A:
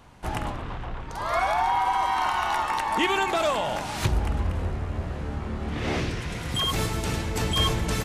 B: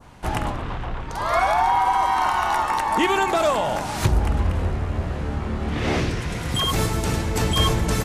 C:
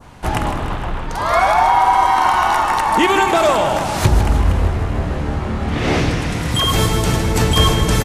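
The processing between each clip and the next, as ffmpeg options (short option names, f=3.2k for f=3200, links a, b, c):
-af "adynamicequalizer=threshold=0.00891:dfrequency=3000:dqfactor=0.89:tfrequency=3000:tqfactor=0.89:attack=5:release=100:ratio=0.375:range=2.5:mode=cutabove:tftype=bell,volume=5dB"
-af "aecho=1:1:156|312|468|624|780|936|1092:0.335|0.198|0.117|0.0688|0.0406|0.0239|0.0141,volume=5.5dB"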